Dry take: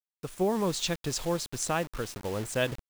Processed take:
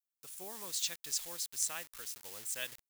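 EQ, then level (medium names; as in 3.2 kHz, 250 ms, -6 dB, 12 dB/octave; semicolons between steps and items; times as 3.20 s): pre-emphasis filter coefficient 0.97; dynamic bell 1.9 kHz, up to +4 dB, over -60 dBFS, Q 3.1; 0.0 dB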